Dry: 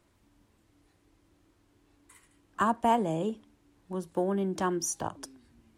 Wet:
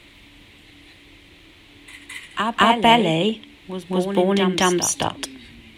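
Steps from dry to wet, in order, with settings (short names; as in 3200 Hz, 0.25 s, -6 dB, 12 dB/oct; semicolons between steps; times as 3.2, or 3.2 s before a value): band shelf 2800 Hz +15 dB 1.3 oct; in parallel at -1 dB: compressor, threshold -42 dBFS, peak gain reduction 20.5 dB; on the sum: reverse echo 0.214 s -7 dB; gain +9 dB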